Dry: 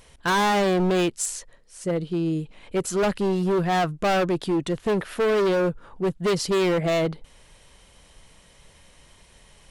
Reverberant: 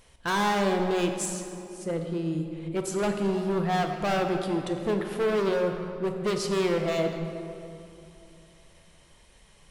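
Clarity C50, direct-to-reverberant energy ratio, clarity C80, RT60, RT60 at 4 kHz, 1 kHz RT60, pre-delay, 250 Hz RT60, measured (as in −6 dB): 5.5 dB, 4.0 dB, 6.5 dB, 2.7 s, 1.7 s, 2.5 s, 8 ms, 3.2 s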